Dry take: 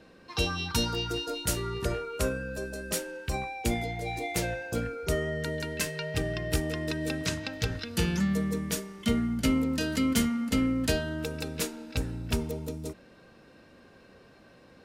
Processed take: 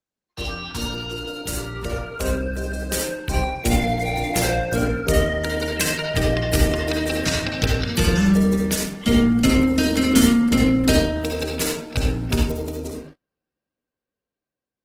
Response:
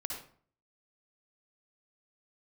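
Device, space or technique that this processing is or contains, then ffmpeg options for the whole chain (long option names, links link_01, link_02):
speakerphone in a meeting room: -filter_complex "[1:a]atrim=start_sample=2205[link_01];[0:a][link_01]afir=irnorm=-1:irlink=0,dynaudnorm=framelen=760:gausssize=7:maxgain=11dB,agate=range=-37dB:threshold=-39dB:ratio=16:detection=peak" -ar 48000 -c:a libopus -b:a 16k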